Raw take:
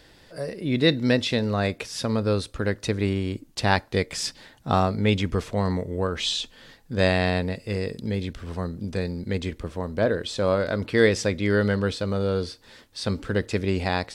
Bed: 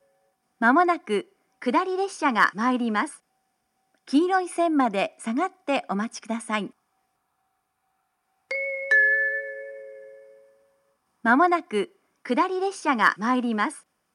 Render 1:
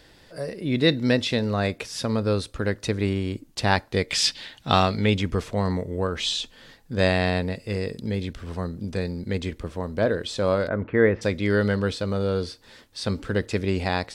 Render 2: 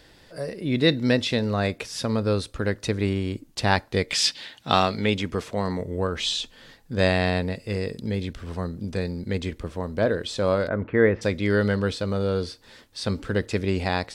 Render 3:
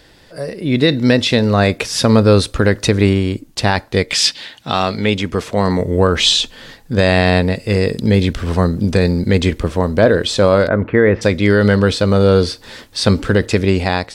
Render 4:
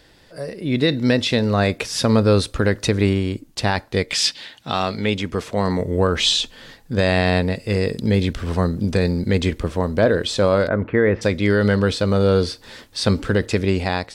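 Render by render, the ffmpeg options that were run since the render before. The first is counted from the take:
-filter_complex "[0:a]asplit=3[a][b][c];[a]afade=t=out:st=4.08:d=0.02[d];[b]equalizer=f=3.2k:w=0.81:g=13,afade=t=in:st=4.08:d=0.02,afade=t=out:st=5.05:d=0.02[e];[c]afade=t=in:st=5.05:d=0.02[f];[d][e][f]amix=inputs=3:normalize=0,asplit=3[g][h][i];[g]afade=t=out:st=10.67:d=0.02[j];[h]lowpass=f=2k:w=0.5412,lowpass=f=2k:w=1.3066,afade=t=in:st=10.67:d=0.02,afade=t=out:st=11.21:d=0.02[k];[i]afade=t=in:st=11.21:d=0.02[l];[j][k][l]amix=inputs=3:normalize=0"
-filter_complex "[0:a]asettb=1/sr,asplit=3[a][b][c];[a]atrim=end=4.134[d];[b]atrim=start=4.13:end=5.8,asetpts=PTS-STARTPTS,afade=t=in:d=0.004:c=qsin,afade=t=out:st=1.666:d=0.004:c=qsin,highpass=f=170:p=1[e];[c]atrim=start=5.796[f];[d][e]acrossfade=d=0.004:c1=hsin:c2=qsin[g];[g][f]acrossfade=d=0.004:c1=qsin:c2=hsin"
-af "dynaudnorm=f=150:g=9:m=10dB,alimiter=level_in=6dB:limit=-1dB:release=50:level=0:latency=1"
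-af "volume=-5dB"

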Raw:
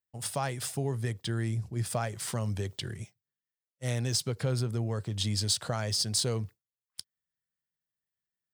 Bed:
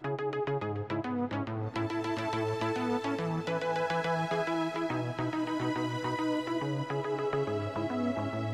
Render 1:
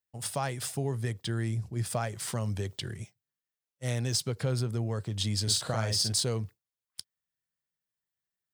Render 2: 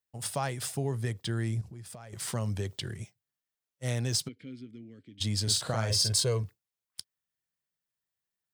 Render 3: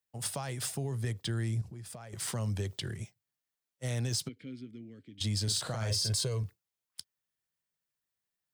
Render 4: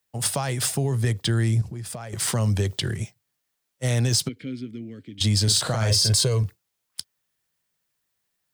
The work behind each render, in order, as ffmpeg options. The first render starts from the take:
-filter_complex "[0:a]asettb=1/sr,asplit=3[a][b][c];[a]atrim=end=5.434[d];[b]atrim=start=5.43:end=6.13,asetpts=PTS-STARTPTS,afade=t=in:d=0.004:c=qsin,afade=t=out:st=0.696:d=0.004:c=qsin,asplit=2[e][f];[f]adelay=45,volume=-4dB[g];[e][g]amix=inputs=2:normalize=0,atrim=end_sample=30870[h];[c]atrim=start=6.126[i];[d][h]acrossfade=d=0.004:c1=hsin:c2=qsin[j];[j][i]acrossfade=d=0.004:c1=qsin:c2=hsin"
-filter_complex "[0:a]asettb=1/sr,asplit=3[a][b][c];[a]atrim=end=1.614[d];[b]atrim=start=1.61:end=2.13,asetpts=PTS-STARTPTS,afade=t=in:d=0.004:c=qsin,afade=t=out:st=0.516:d=0.004:c=qsin,acompressor=threshold=-41dB:ratio=16:attack=3.2:release=140:knee=1:detection=peak[e];[c]atrim=start=2.126[f];[d][e]acrossfade=d=0.004:c1=hsin:c2=qsin[g];[g][f]acrossfade=d=0.004:c1=qsin:c2=hsin,asplit=3[h][i][j];[h]afade=t=out:st=4.27:d=0.02[k];[i]asplit=3[l][m][n];[l]bandpass=f=270:t=q:w=8,volume=0dB[o];[m]bandpass=f=2.29k:t=q:w=8,volume=-6dB[p];[n]bandpass=f=3.01k:t=q:w=8,volume=-9dB[q];[o][p][q]amix=inputs=3:normalize=0,afade=t=in:st=4.27:d=0.02,afade=t=out:st=5.2:d=0.02[r];[j]afade=t=in:st=5.2:d=0.02[s];[k][r][s]amix=inputs=3:normalize=0,asettb=1/sr,asplit=3[t][u][v];[t]atrim=end=5.904[w];[u]atrim=start=5.9:end=6.43,asetpts=PTS-STARTPTS,afade=t=in:d=0.004:c=qsin,afade=t=out:st=0.526:d=0.004:c=qsin,aecho=1:1:1.9:0.67,atrim=end_sample=23373[x];[v]atrim=start=6.426[y];[w][x]acrossfade=d=0.004:c1=hsin:c2=qsin[z];[z][y]acrossfade=d=0.004:c1=qsin:c2=hsin"
-filter_complex "[0:a]alimiter=limit=-22dB:level=0:latency=1:release=22,acrossover=split=140|3000[a][b][c];[b]acompressor=threshold=-35dB:ratio=6[d];[a][d][c]amix=inputs=3:normalize=0"
-af "volume=11dB"

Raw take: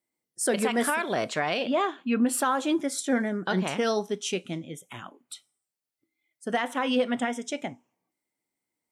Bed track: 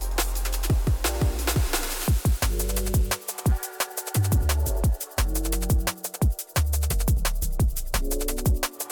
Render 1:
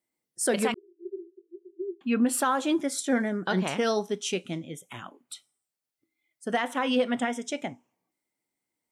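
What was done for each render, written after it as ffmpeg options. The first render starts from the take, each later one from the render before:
-filter_complex "[0:a]asettb=1/sr,asplit=3[a][b][c];[a]atrim=end=0.744[d];[b]atrim=start=0.74:end=2.01,asetpts=PTS-STARTPTS,afade=t=in:d=0.004:c=qsin,afade=t=out:st=1.266:d=0.004:c=qsin,asuperpass=centerf=370:order=12:qfactor=5.9[e];[c]atrim=start=2.006[f];[d][e]acrossfade=d=0.004:c1=hsin:c2=qsin[g];[g][f]acrossfade=d=0.004:c1=qsin:c2=hsin"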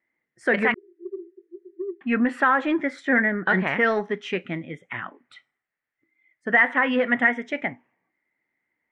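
-filter_complex "[0:a]asplit=2[a][b];[b]asoftclip=type=tanh:threshold=-25.5dB,volume=-7.5dB[c];[a][c]amix=inputs=2:normalize=0,lowpass=f=1.9k:t=q:w=5.9"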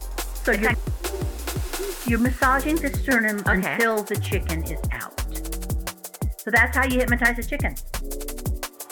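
-filter_complex "[1:a]volume=-4.5dB[a];[0:a][a]amix=inputs=2:normalize=0"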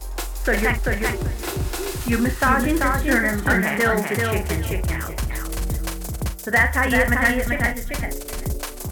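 -filter_complex "[0:a]asplit=2[a][b];[b]adelay=43,volume=-9.5dB[c];[a][c]amix=inputs=2:normalize=0,aecho=1:1:388|776|1164:0.631|0.0946|0.0142"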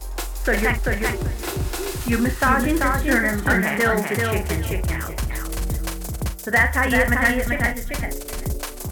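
-af anull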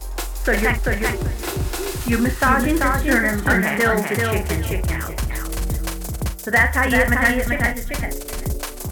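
-af "volume=1.5dB"

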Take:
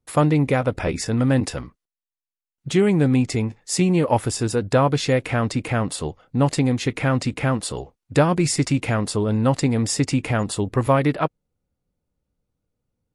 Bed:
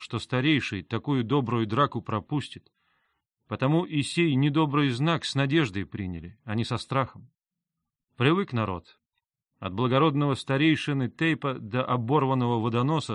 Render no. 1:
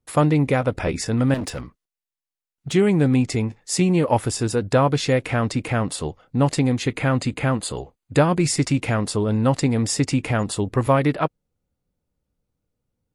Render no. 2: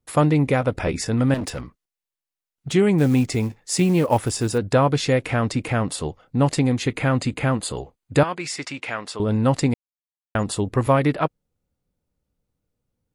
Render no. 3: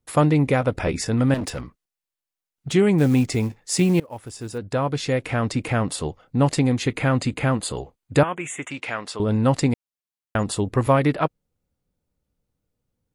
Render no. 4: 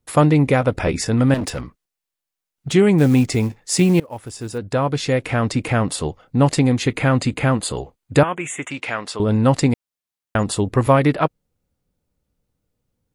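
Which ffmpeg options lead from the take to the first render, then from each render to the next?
-filter_complex "[0:a]asettb=1/sr,asplit=3[a][b][c];[a]atrim=end=1.344[d];[b]atrim=start=1.34:end=2.72,asetpts=PTS-STARTPTS,afade=t=in:d=0.004:c=qsin,afade=t=out:st=1.376:d=0.004:c=qsin,volume=24dB,asoftclip=hard,volume=-24dB[e];[c]atrim=start=2.716[f];[d][e]acrossfade=d=0.004:c1=hsin:c2=qsin[g];[g][f]acrossfade=d=0.004:c1=qsin:c2=hsin,asettb=1/sr,asplit=3[h][i][j];[h]atrim=end=6.834[k];[i]atrim=start=6.83:end=8.4,asetpts=PTS-STARTPTS,afade=t=in:d=0.004:c=qsin,afade=t=out:st=1.566:d=0.004:c=qsin,asuperstop=centerf=5500:order=12:qfactor=7.3[l];[j]atrim=start=8.396[m];[k][l]acrossfade=d=0.004:c1=hsin:c2=qsin[n];[n][m]acrossfade=d=0.004:c1=qsin:c2=hsin"
-filter_complex "[0:a]asettb=1/sr,asplit=3[a][b][c];[a]atrim=end=2.984[d];[b]atrim=start=2.98:end=4.58,asetpts=PTS-STARTPTS,afade=t=in:d=0.004:c=qsin,afade=t=out:st=1.596:d=0.004:c=qsin,acrusher=bits=7:mode=log:mix=0:aa=0.000001[e];[c]atrim=start=4.576[f];[d][e]acrossfade=d=0.004:c1=hsin:c2=qsin[g];[g][f]acrossfade=d=0.004:c1=qsin:c2=hsin,asettb=1/sr,asplit=3[h][i][j];[h]atrim=end=8.234[k];[i]atrim=start=8.23:end=9.2,asetpts=PTS-STARTPTS,afade=t=in:d=0.004:c=qsin,afade=t=out:st=0.966:d=0.004:c=qsin,bandpass=f=2.1k:t=q:w=0.58[l];[j]atrim=start=9.196[m];[k][l]acrossfade=d=0.004:c1=hsin:c2=qsin[n];[n][m]acrossfade=d=0.004:c1=qsin:c2=hsin,asplit=3[o][p][q];[o]atrim=end=9.74,asetpts=PTS-STARTPTS,afade=t=out:st=9.736:d=0.004:c=hsin[r];[p]atrim=start=9.74:end=10.35,asetpts=PTS-STARTPTS,volume=0[s];[q]atrim=start=10.35,asetpts=PTS-STARTPTS,afade=t=in:d=0.004:c=hsin[t];[r][s][t]concat=n=3:v=0:a=1"
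-filter_complex "[0:a]asplit=3[a][b][c];[a]afade=t=out:st=8.21:d=0.02[d];[b]asuperstop=centerf=4700:order=8:qfactor=1.5,afade=t=in:st=8.21:d=0.02,afade=t=out:st=8.7:d=0.02[e];[c]afade=t=in:st=8.7:d=0.02[f];[d][e][f]amix=inputs=3:normalize=0,asplit=2[g][h];[g]atrim=end=4,asetpts=PTS-STARTPTS,afade=t=out:st=3.996:d=0.004:c=hsin:silence=0.0630957[i];[h]atrim=start=4,asetpts=PTS-STARTPTS,afade=t=in:d=1.67:silence=0.0630957[j];[i][j]concat=n=2:v=0:a=1"
-af "volume=3.5dB,alimiter=limit=-2dB:level=0:latency=1"

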